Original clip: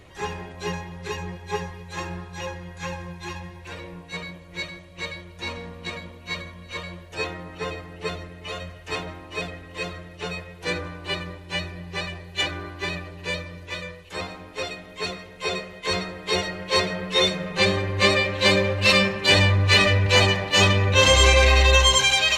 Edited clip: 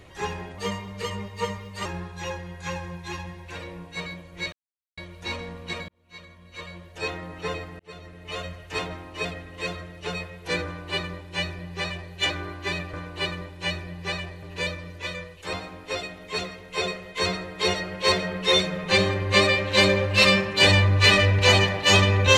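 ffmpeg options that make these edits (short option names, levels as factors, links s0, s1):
-filter_complex "[0:a]asplit=9[s0][s1][s2][s3][s4][s5][s6][s7][s8];[s0]atrim=end=0.584[s9];[s1]atrim=start=0.58:end=2.02,asetpts=PTS-STARTPTS,asetrate=49833,aresample=44100,atrim=end_sample=56198,asetpts=PTS-STARTPTS[s10];[s2]atrim=start=2.016:end=4.69,asetpts=PTS-STARTPTS,afade=t=out:st=2.67:d=0.004:c=hsin[s11];[s3]atrim=start=4.69:end=5.14,asetpts=PTS-STARTPTS,volume=0[s12];[s4]atrim=start=5.14:end=6.05,asetpts=PTS-STARTPTS,afade=t=in:d=0.004:c=hsin,afade=t=out:st=0.906:d=0.004:c=hsin[s13];[s5]atrim=start=6.05:end=7.96,asetpts=PTS-STARTPTS,afade=t=in:d=1.4,afade=t=out:st=1.906:d=0.004:c=hsin[s14];[s6]atrim=start=7.96:end=13.102,asetpts=PTS-STARTPTS,afade=t=in:d=0.57[s15];[s7]atrim=start=10.818:end=12.312[s16];[s8]atrim=start=13.098[s17];[s9][s10]acrossfade=d=0.004:c1=hsin:c2=hsin[s18];[s11][s12][s13][s14][s15]concat=n=5:v=0:a=1[s19];[s18][s19]acrossfade=d=0.004:c1=hsin:c2=hsin[s20];[s20][s16]acrossfade=d=0.004:c1=hsin:c2=hsin[s21];[s21][s17]acrossfade=d=0.004:c1=hsin:c2=hsin"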